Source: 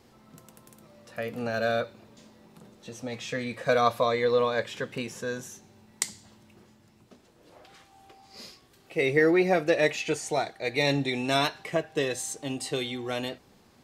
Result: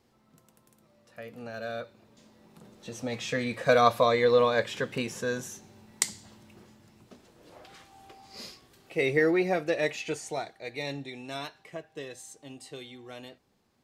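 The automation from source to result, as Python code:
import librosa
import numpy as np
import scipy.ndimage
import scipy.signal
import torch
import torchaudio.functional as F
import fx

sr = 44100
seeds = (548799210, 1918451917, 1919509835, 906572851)

y = fx.gain(x, sr, db=fx.line((1.68, -9.5), (2.99, 2.0), (8.45, 2.0), (9.63, -4.5), (10.17, -4.5), (11.14, -12.5)))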